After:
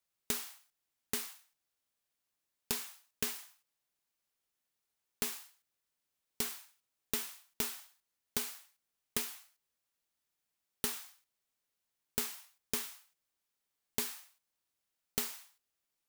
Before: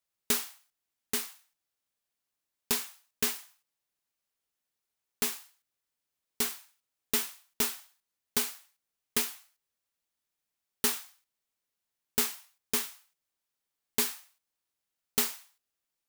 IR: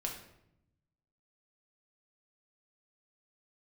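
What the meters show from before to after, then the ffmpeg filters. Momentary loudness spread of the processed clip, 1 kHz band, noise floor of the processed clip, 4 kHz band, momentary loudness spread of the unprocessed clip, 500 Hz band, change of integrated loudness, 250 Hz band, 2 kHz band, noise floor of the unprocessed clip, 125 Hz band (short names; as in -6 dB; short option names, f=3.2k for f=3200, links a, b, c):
13 LU, -7.0 dB, under -85 dBFS, -6.5 dB, 14 LU, -6.5 dB, -7.0 dB, -6.5 dB, -7.0 dB, under -85 dBFS, -1.5 dB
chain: -af "acompressor=threshold=-32dB:ratio=5"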